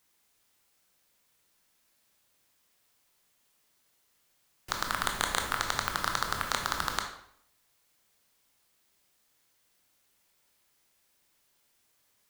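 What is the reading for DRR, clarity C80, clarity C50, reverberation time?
3.0 dB, 10.0 dB, 6.5 dB, 0.65 s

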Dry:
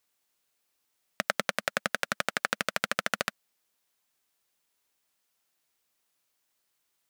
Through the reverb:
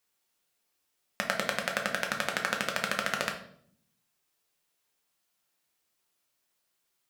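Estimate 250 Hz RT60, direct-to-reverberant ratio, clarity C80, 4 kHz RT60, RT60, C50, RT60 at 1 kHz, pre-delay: 0.90 s, 1.5 dB, 12.5 dB, 0.50 s, 0.65 s, 8.0 dB, 0.55 s, 6 ms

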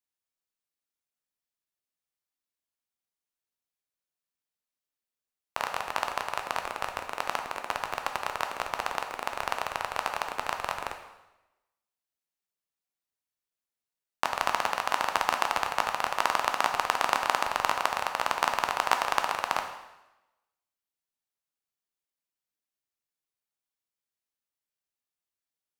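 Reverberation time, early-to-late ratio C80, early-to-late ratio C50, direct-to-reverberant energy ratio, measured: 1.0 s, 9.5 dB, 7.5 dB, 4.5 dB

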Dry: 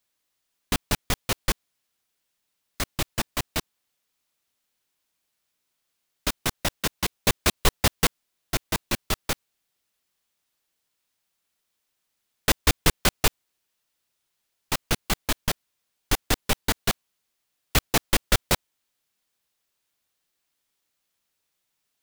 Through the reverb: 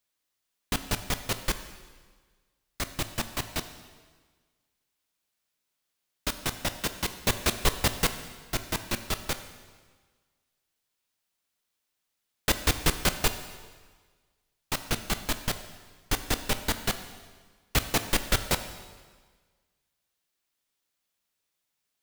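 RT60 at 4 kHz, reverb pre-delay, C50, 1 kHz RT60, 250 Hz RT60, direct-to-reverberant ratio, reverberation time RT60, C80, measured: 1.4 s, 6 ms, 11.0 dB, 1.5 s, 1.5 s, 9.0 dB, 1.5 s, 12.0 dB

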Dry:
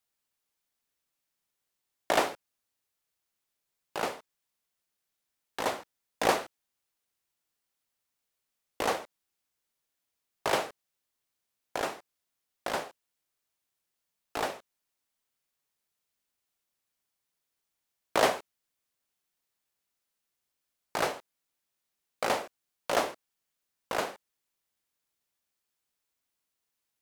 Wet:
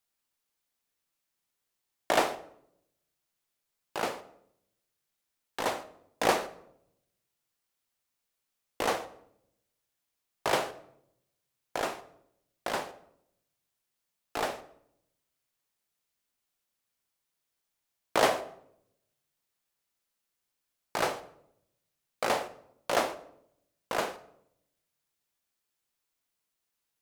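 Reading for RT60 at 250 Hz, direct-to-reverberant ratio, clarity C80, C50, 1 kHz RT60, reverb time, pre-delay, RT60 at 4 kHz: 1.0 s, 11.0 dB, 18.0 dB, 15.0 dB, 0.65 s, 0.75 s, 6 ms, 0.50 s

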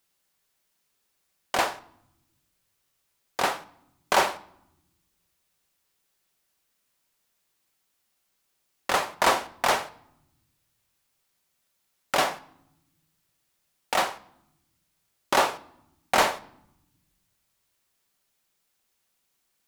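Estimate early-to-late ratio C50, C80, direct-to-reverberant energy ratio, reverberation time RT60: 19.0 dB, 21.5 dB, 12.0 dB, 0.80 s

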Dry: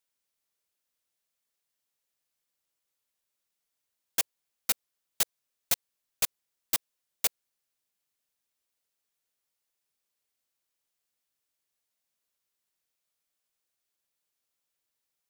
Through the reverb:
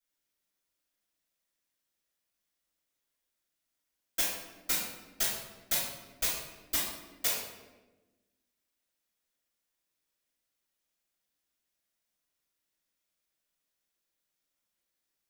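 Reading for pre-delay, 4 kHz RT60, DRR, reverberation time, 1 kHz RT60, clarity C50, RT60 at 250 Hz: 3 ms, 0.75 s, -9.0 dB, 1.2 s, 1.0 s, 1.0 dB, 1.7 s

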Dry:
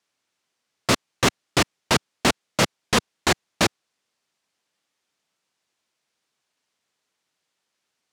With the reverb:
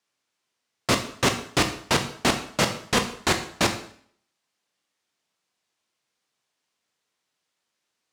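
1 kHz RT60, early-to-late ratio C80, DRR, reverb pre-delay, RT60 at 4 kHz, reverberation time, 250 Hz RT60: 0.55 s, 13.0 dB, 5.5 dB, 7 ms, 0.55 s, 0.55 s, 0.60 s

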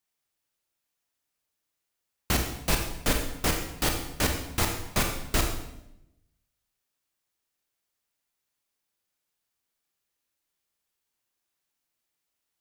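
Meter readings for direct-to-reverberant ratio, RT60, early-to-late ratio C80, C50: 3.0 dB, 0.85 s, 8.0 dB, 5.5 dB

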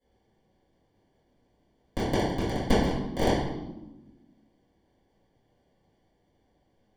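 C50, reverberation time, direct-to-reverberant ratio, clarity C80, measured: 0.5 dB, 1.0 s, -13.5 dB, 4.5 dB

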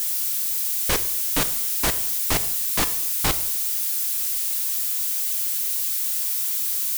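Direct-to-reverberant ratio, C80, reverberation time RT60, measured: 11.0 dB, 17.0 dB, 0.75 s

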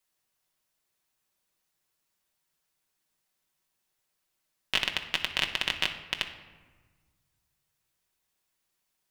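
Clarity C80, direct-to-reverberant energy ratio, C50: 11.5 dB, 3.0 dB, 9.5 dB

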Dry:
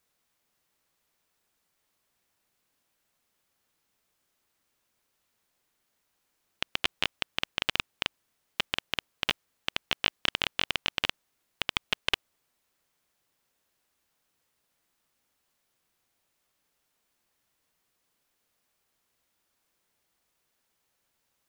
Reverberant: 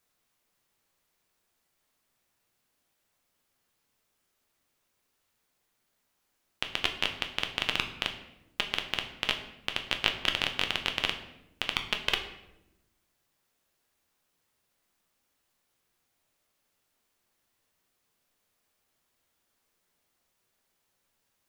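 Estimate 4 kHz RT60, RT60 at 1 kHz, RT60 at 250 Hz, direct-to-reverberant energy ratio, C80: 0.65 s, 0.80 s, 1.4 s, 4.5 dB, 12.0 dB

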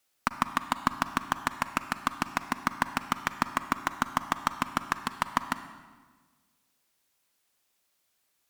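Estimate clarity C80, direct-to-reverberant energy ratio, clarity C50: 13.0 dB, 11.0 dB, 11.5 dB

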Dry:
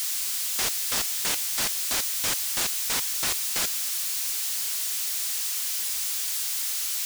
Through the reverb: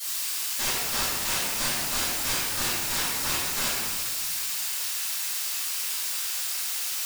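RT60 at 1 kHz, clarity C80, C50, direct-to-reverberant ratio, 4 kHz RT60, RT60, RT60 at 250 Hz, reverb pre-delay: 1.9 s, -0.5 dB, -2.5 dB, -19.0 dB, 1.0 s, 1.8 s, 2.2 s, 3 ms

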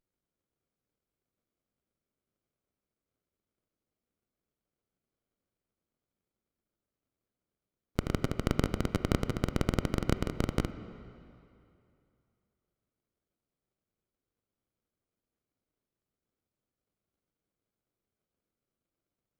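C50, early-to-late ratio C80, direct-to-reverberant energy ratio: 12.0 dB, 12.5 dB, 11.0 dB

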